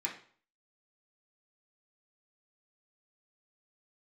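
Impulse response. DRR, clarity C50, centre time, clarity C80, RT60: −4.5 dB, 8.5 dB, 20 ms, 13.0 dB, 0.50 s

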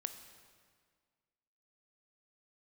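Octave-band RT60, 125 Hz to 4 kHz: 1.8, 1.9, 1.8, 1.8, 1.6, 1.5 seconds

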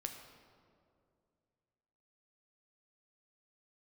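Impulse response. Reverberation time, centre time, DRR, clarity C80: 2.4 s, 37 ms, 4.0 dB, 7.5 dB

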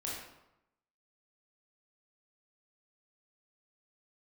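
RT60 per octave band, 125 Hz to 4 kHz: 0.95, 0.90, 0.85, 0.90, 0.70, 0.60 seconds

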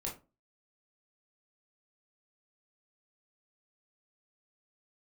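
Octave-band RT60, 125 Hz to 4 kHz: 0.35, 0.40, 0.30, 0.30, 0.20, 0.20 seconds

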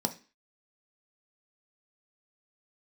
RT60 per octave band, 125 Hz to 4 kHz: 0.30, 0.40, 0.35, 0.35, 0.40, 0.35 seconds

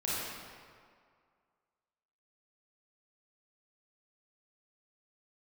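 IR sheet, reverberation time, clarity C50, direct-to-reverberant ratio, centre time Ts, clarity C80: 2.1 s, −4.5 dB, −8.5 dB, 141 ms, −1.5 dB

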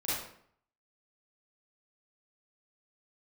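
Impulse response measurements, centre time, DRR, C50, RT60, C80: 74 ms, −10.5 dB, −3.0 dB, 0.60 s, 3.0 dB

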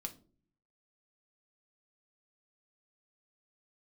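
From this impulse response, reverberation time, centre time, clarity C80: 0.45 s, 6 ms, 21.5 dB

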